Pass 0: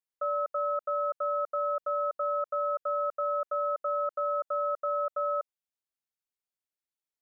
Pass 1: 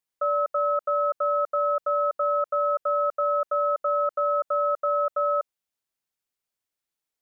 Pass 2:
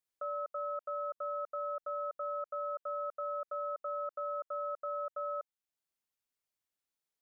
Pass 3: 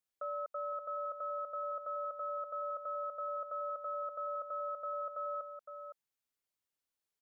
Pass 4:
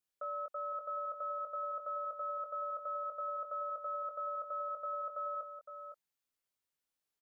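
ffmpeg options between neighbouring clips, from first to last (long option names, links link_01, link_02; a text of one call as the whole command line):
ffmpeg -i in.wav -af "acontrast=47" out.wav
ffmpeg -i in.wav -af "alimiter=level_in=2.5dB:limit=-24dB:level=0:latency=1:release=480,volume=-2.5dB,volume=-4.5dB" out.wav
ffmpeg -i in.wav -af "aecho=1:1:511:0.376,volume=-1.5dB" out.wav
ffmpeg -i in.wav -filter_complex "[0:a]asplit=2[link_01][link_02];[link_02]adelay=20,volume=-6dB[link_03];[link_01][link_03]amix=inputs=2:normalize=0,volume=-1dB" out.wav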